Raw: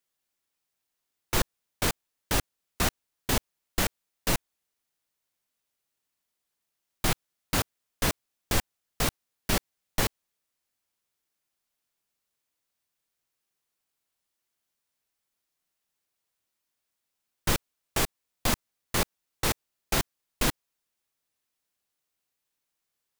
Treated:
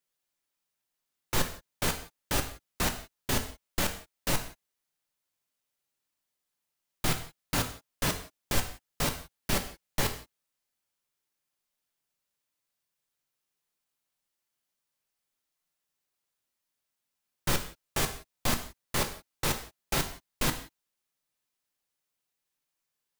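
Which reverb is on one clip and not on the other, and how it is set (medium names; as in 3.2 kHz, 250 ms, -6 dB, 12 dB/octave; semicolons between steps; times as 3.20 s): gated-style reverb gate 200 ms falling, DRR 5.5 dB; trim -3 dB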